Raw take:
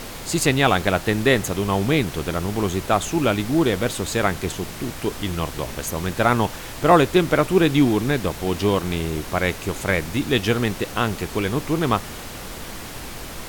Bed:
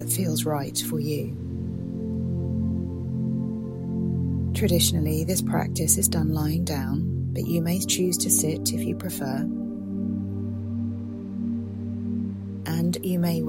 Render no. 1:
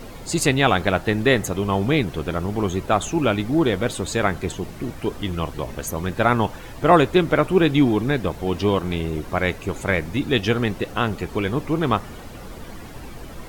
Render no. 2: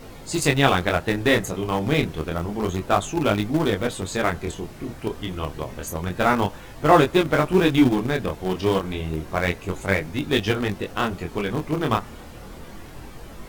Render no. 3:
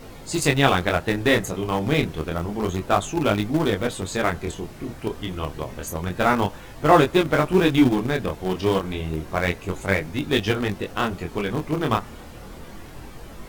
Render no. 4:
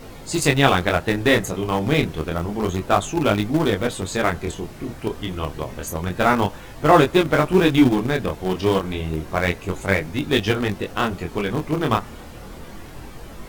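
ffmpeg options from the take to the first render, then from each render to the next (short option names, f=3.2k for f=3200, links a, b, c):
-af "afftdn=nr=11:nf=-35"
-filter_complex "[0:a]flanger=delay=19.5:depth=7.4:speed=0.29,asplit=2[a][b];[b]aeval=exprs='val(0)*gte(abs(val(0)),0.126)':c=same,volume=-9dB[c];[a][c]amix=inputs=2:normalize=0"
-af anull
-af "volume=2dB,alimiter=limit=-1dB:level=0:latency=1"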